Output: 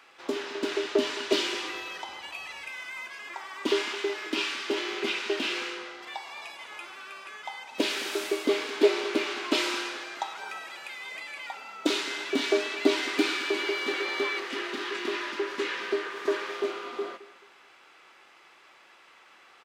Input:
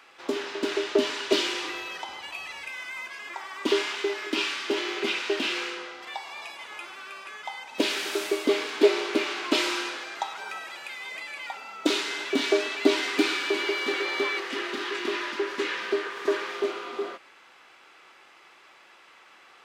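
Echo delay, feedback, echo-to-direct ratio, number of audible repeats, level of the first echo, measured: 216 ms, 32%, -17.5 dB, 2, -18.0 dB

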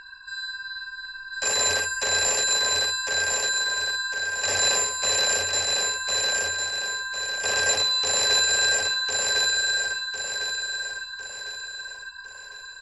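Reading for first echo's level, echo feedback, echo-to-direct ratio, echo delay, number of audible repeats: -3.0 dB, 43%, -2.0 dB, 1053 ms, 5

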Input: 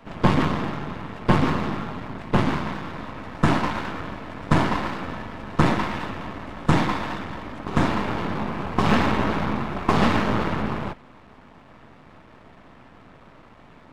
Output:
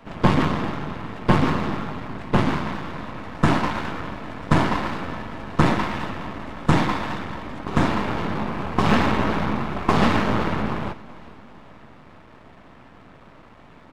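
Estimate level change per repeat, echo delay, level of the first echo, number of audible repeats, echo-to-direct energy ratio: -5.5 dB, 401 ms, -21.5 dB, 3, -20.0 dB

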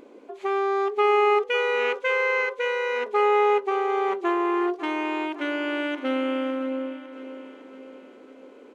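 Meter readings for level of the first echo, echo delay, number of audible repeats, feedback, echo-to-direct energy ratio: -13.5 dB, 555 ms, 4, 53%, -12.0 dB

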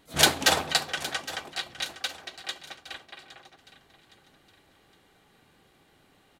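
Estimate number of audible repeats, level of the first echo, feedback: 3, -16.0 dB, 38%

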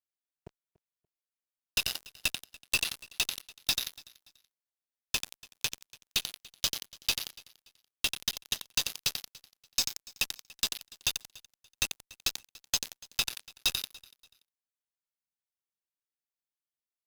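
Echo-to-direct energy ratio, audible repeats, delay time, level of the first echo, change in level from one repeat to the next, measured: -21.5 dB, 2, 288 ms, -22.0 dB, -11.0 dB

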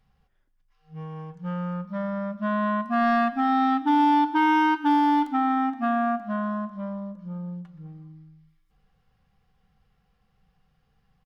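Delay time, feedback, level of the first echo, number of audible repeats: 125 ms, 57%, -17.5 dB, 4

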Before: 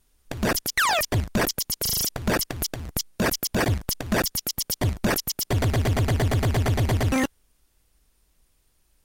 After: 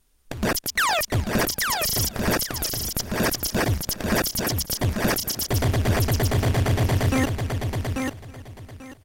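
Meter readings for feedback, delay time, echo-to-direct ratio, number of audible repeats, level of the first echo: no regular repeats, 325 ms, -4.0 dB, 6, -21.5 dB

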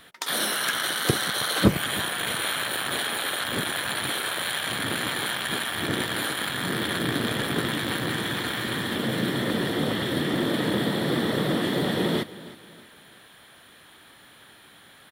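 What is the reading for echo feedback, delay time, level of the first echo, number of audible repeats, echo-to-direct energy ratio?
38%, 317 ms, -18.0 dB, 3, -17.5 dB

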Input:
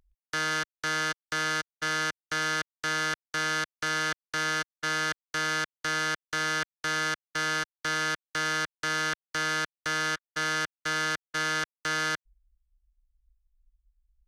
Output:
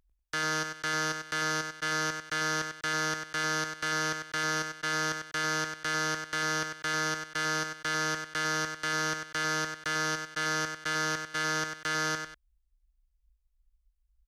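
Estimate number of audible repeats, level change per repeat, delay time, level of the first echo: 2, -10.0 dB, 96 ms, -7.0 dB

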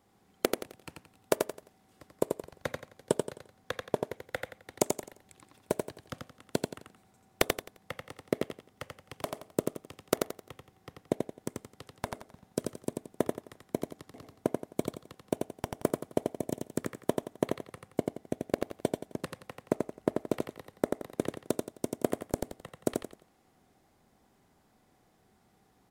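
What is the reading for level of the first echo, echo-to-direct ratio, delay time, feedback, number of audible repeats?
-4.0 dB, -3.5 dB, 87 ms, 31%, 4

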